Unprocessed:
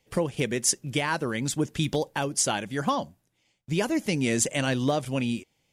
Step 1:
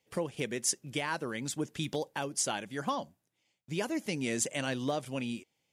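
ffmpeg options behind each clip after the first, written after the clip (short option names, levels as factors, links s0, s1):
-af "highpass=f=170:p=1,volume=0.473"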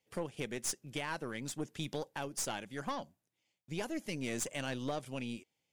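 -af "aeval=exprs='(tanh(20*val(0)+0.55)-tanh(0.55))/20':c=same,volume=0.75"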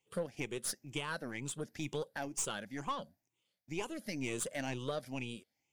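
-af "afftfilt=real='re*pow(10,11/40*sin(2*PI*(0.69*log(max(b,1)*sr/1024/100)/log(2)-(2.1)*(pts-256)/sr)))':imag='im*pow(10,11/40*sin(2*PI*(0.69*log(max(b,1)*sr/1024/100)/log(2)-(2.1)*(pts-256)/sr)))':win_size=1024:overlap=0.75,volume=0.794"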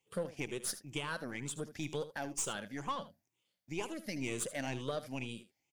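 -af "aecho=1:1:77:0.2"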